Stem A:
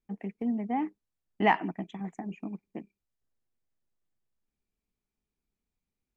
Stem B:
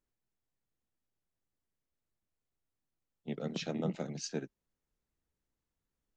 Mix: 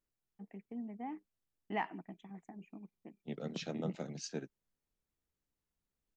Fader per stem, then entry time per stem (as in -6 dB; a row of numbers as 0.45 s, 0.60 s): -13.0 dB, -3.5 dB; 0.30 s, 0.00 s